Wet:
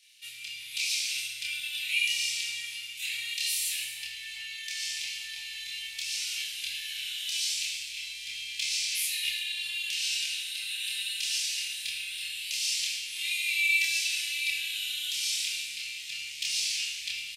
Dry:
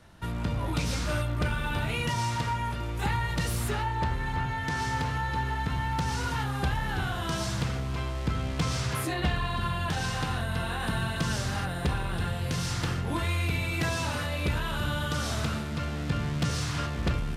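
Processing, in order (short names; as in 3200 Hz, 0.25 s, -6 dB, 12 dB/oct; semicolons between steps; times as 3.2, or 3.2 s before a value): elliptic high-pass 2400 Hz, stop band 50 dB; doubler 27 ms -2 dB; non-linear reverb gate 0.46 s falling, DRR 2 dB; gain +4.5 dB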